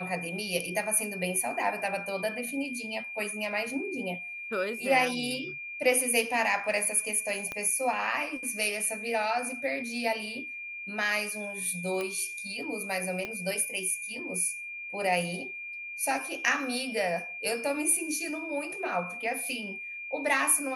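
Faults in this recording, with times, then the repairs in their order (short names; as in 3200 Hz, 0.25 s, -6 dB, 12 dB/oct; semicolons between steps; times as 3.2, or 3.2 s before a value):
tone 2400 Hz -37 dBFS
7.52 pop -20 dBFS
12.01 pop -20 dBFS
13.25 pop -21 dBFS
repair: de-click; notch 2400 Hz, Q 30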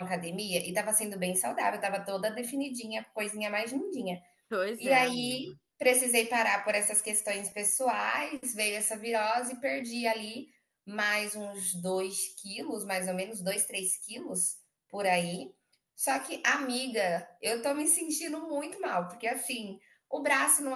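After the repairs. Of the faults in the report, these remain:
7.52 pop
13.25 pop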